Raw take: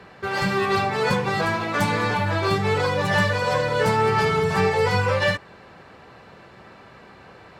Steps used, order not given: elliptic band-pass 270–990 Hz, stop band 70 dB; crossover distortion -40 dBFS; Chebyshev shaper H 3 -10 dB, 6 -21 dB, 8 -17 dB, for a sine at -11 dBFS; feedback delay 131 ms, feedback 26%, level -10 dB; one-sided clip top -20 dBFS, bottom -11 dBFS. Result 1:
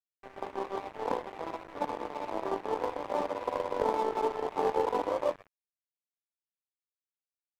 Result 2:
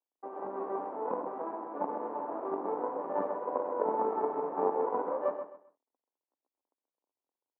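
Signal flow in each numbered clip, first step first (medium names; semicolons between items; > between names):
feedback delay > Chebyshev shaper > elliptic band-pass > one-sided clip > crossover distortion; crossover distortion > Chebyshev shaper > feedback delay > one-sided clip > elliptic band-pass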